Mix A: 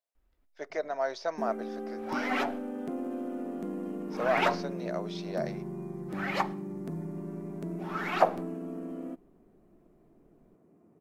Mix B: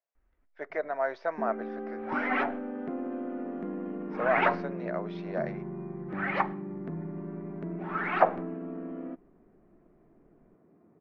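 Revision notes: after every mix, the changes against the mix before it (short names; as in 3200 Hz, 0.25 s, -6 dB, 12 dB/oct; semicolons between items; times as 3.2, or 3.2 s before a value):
master: add synth low-pass 1900 Hz, resonance Q 1.5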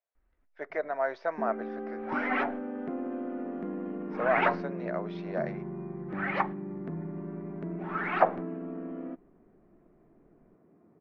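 second sound: send -7.0 dB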